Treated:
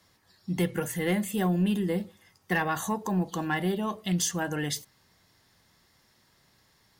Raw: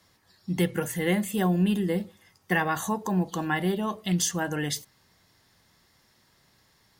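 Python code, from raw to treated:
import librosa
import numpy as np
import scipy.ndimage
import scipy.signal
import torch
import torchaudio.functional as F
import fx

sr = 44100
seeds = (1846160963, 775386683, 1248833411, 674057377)

y = 10.0 ** (-15.0 / 20.0) * np.tanh(x / 10.0 ** (-15.0 / 20.0))
y = F.gain(torch.from_numpy(y), -1.0).numpy()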